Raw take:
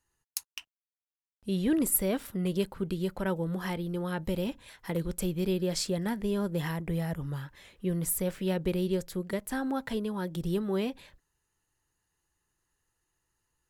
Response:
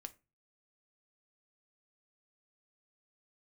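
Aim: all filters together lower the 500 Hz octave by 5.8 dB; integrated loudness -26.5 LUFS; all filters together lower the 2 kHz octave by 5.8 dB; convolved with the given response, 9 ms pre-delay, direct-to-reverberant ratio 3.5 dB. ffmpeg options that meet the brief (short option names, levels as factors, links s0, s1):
-filter_complex "[0:a]equalizer=f=500:t=o:g=-8,equalizer=f=2000:t=o:g=-7,asplit=2[s0][s1];[1:a]atrim=start_sample=2205,adelay=9[s2];[s1][s2]afir=irnorm=-1:irlink=0,volume=1.26[s3];[s0][s3]amix=inputs=2:normalize=0,volume=2.11"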